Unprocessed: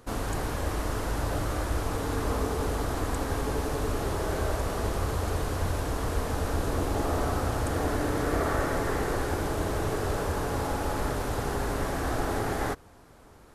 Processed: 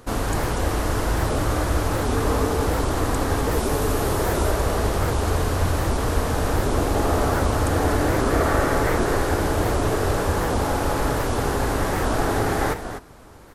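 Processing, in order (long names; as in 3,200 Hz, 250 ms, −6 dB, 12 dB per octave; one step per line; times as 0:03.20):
0:03.52–0:04.51: high-shelf EQ 11,000 Hz +9.5 dB
on a send: single-tap delay 245 ms −9.5 dB
on the sum: wow of a warped record 78 rpm, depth 250 cents
level +7 dB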